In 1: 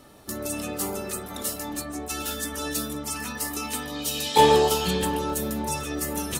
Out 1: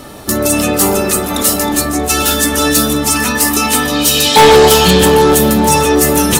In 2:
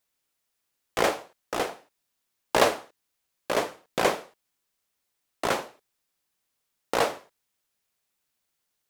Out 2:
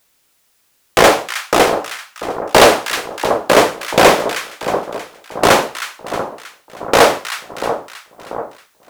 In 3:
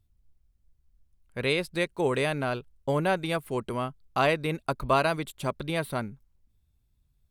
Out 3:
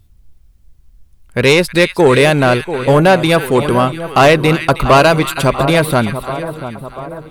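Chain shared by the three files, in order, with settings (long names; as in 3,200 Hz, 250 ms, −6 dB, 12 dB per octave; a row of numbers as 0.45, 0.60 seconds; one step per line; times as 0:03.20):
echo with a time of its own for lows and highs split 1,300 Hz, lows 689 ms, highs 316 ms, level −13 dB
soft clipping −21 dBFS
normalise the peak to −2 dBFS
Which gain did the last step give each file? +19.0, +19.0, +19.0 decibels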